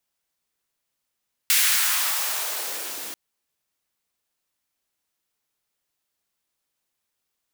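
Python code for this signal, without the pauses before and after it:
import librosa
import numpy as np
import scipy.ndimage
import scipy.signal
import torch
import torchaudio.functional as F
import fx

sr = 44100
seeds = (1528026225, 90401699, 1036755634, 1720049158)

y = fx.riser_noise(sr, seeds[0], length_s=1.64, colour='white', kind='highpass', start_hz=2100.0, end_hz=260.0, q=1.4, swell_db=-17.0, law='exponential')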